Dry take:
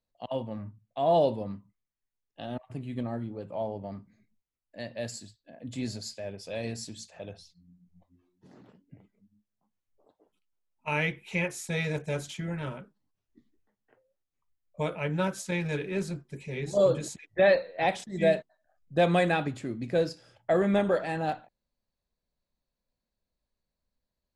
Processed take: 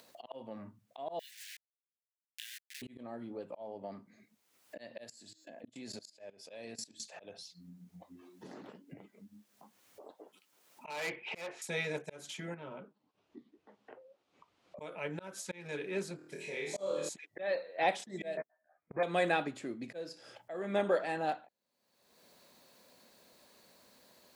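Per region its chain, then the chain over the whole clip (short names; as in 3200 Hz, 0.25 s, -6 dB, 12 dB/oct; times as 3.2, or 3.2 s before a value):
1.19–2.82 level-crossing sampler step -40.5 dBFS + steep high-pass 1700 Hz 72 dB/oct
5.04–7 de-hum 315.9 Hz, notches 25 + level quantiser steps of 20 dB
10.9–11.62 synth low-pass 2700 Hz, resonance Q 2 + bell 710 Hz +13.5 dB 2 oct + tube stage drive 25 dB, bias 0.3
12.54–14.81 LPF 2900 Hz + bell 1800 Hz -8 dB 0.7 oct + compressor 2:1, threshold -42 dBFS
16.16–17.09 low shelf 360 Hz -7.5 dB + flutter echo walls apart 4.4 m, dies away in 0.63 s
18.37–19.03 doubler 13 ms -4 dB + sample leveller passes 3 + brick-wall FIR low-pass 2500 Hz
whole clip: HPF 280 Hz 12 dB/oct; auto swell 0.348 s; upward compressor, threshold -35 dBFS; gain -3 dB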